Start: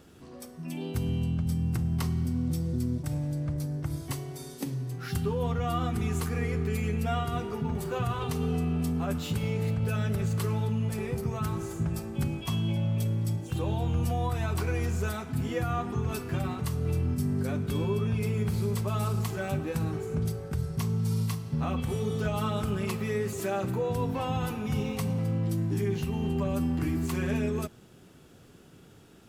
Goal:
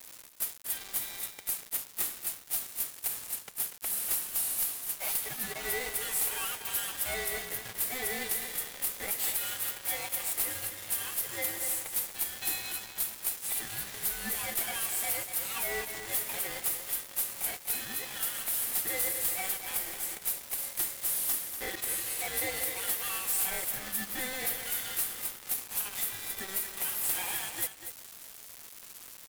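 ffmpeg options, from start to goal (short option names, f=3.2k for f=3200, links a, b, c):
-filter_complex "[0:a]highpass=f=1.1k:w=0.5412,highpass=f=1.1k:w=1.3066,asplit=2[a][b];[b]acompressor=threshold=-52dB:ratio=5,volume=-1dB[c];[a][c]amix=inputs=2:normalize=0,aeval=exprs='0.1*(cos(1*acos(clip(val(0)/0.1,-1,1)))-cos(1*PI/2))+0.02*(cos(6*acos(clip(val(0)/0.1,-1,1)))-cos(6*PI/2))+0.00447*(cos(8*acos(clip(val(0)/0.1,-1,1)))-cos(8*PI/2))':c=same,aeval=exprs='val(0)*sin(2*PI*770*n/s)':c=same,aexciter=amount=9.9:drive=4.2:freq=8.3k,acrusher=bits=6:mix=0:aa=0.000001,aeval=exprs='(tanh(35.5*val(0)+0.05)-tanh(0.05))/35.5':c=same,asplit=2[d][e];[e]aecho=0:1:242:0.335[f];[d][f]amix=inputs=2:normalize=0,volume=5.5dB"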